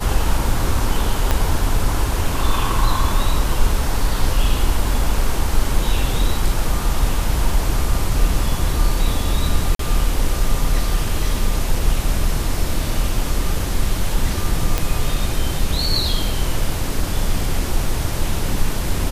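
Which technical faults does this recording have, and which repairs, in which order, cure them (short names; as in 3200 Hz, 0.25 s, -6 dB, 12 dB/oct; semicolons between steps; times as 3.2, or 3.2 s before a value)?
1.31 pop -3 dBFS
9.75–9.79 gap 43 ms
14.78 pop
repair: de-click; interpolate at 9.75, 43 ms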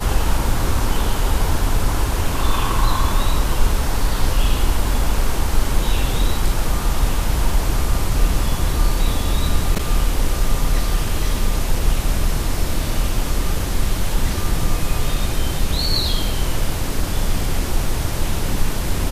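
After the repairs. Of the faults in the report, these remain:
1.31 pop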